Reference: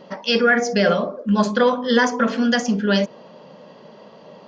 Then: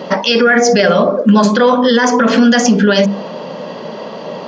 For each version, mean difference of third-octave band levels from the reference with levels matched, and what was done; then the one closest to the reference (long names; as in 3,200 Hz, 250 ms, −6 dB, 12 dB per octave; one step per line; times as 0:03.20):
4.5 dB: high-pass filter 120 Hz
mains-hum notches 50/100/150/200 Hz
downward compressor 3 to 1, threshold −22 dBFS, peak gain reduction 8.5 dB
boost into a limiter +19 dB
level −1 dB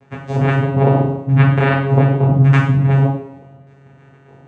10.0 dB: auto-filter low-pass saw down 0.82 Hz 350–2,000 Hz
dead-zone distortion −46 dBFS
channel vocoder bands 4, saw 137 Hz
coupled-rooms reverb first 0.6 s, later 2 s, from −25 dB, DRR −4.5 dB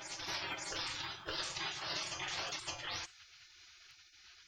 16.0 dB: tuned comb filter 90 Hz, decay 0.23 s, harmonics odd, mix 80%
gate on every frequency bin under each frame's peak −30 dB weak
downward compressor, threshold −53 dBFS, peak gain reduction 10.5 dB
backwards echo 564 ms −3.5 dB
level +14.5 dB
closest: first